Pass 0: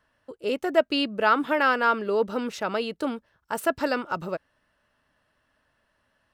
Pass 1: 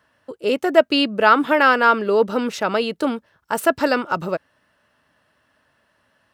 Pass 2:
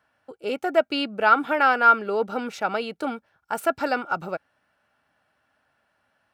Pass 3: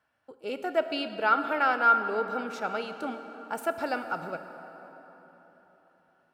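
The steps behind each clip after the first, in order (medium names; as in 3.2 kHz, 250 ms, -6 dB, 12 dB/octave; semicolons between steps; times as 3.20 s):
high-pass 85 Hz; trim +7 dB
small resonant body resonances 780/1400/2300 Hz, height 11 dB, ringing for 30 ms; trim -8.5 dB
plate-style reverb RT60 4.2 s, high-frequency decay 0.6×, DRR 8 dB; trim -6.5 dB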